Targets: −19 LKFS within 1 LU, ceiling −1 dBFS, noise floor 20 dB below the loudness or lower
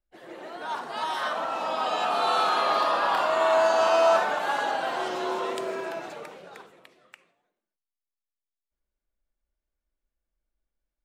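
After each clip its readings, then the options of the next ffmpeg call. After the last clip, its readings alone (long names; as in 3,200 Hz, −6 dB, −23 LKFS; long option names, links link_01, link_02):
integrated loudness −25.0 LKFS; sample peak −10.0 dBFS; target loudness −19.0 LKFS
→ -af "volume=6dB"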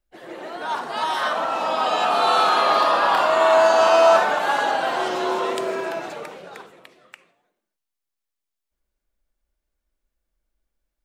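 integrated loudness −19.0 LKFS; sample peak −4.0 dBFS; background noise floor −83 dBFS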